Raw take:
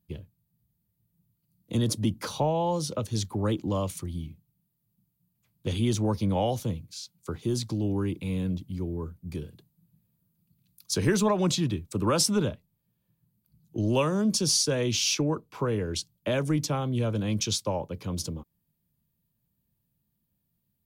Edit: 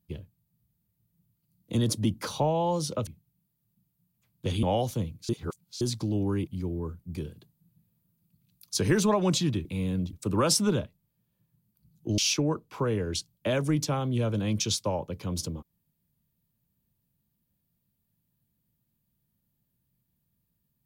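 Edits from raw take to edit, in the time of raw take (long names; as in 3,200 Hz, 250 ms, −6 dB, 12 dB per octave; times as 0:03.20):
0:03.07–0:04.28: remove
0:05.84–0:06.32: remove
0:06.98–0:07.50: reverse
0:08.16–0:08.64: move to 0:11.82
0:13.87–0:14.99: remove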